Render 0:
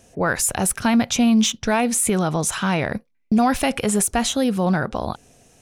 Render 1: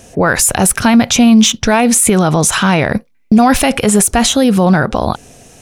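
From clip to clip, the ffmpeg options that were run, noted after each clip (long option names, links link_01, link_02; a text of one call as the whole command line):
ffmpeg -i in.wav -af "alimiter=level_in=14dB:limit=-1dB:release=50:level=0:latency=1,volume=-1dB" out.wav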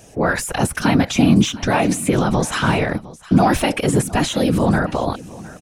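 ffmpeg -i in.wav -filter_complex "[0:a]afftfilt=real='hypot(re,im)*cos(2*PI*random(0))':imag='hypot(re,im)*sin(2*PI*random(1))':win_size=512:overlap=0.75,acrossover=split=2900[link_01][link_02];[link_02]acompressor=threshold=-24dB:ratio=4:attack=1:release=60[link_03];[link_01][link_03]amix=inputs=2:normalize=0,aecho=1:1:709:0.112" out.wav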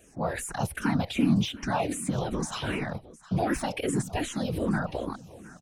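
ffmpeg -i in.wav -filter_complex "[0:a]asplit=2[link_01][link_02];[link_02]afreqshift=-2.6[link_03];[link_01][link_03]amix=inputs=2:normalize=1,volume=-8.5dB" out.wav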